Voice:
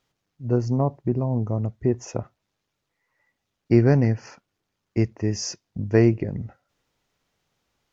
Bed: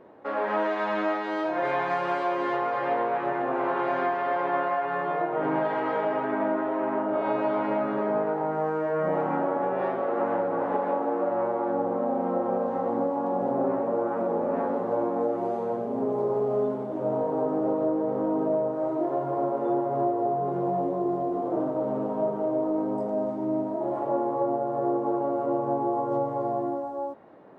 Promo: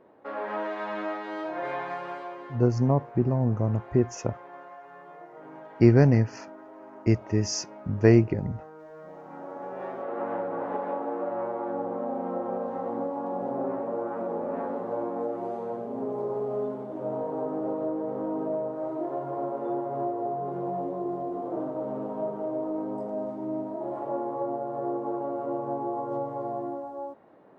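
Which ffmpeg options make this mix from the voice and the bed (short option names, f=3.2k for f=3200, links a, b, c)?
-filter_complex "[0:a]adelay=2100,volume=-0.5dB[a];[1:a]volume=9dB,afade=t=out:st=1.73:d=0.86:silence=0.211349,afade=t=in:st=9.23:d=1.12:silence=0.188365[b];[a][b]amix=inputs=2:normalize=0"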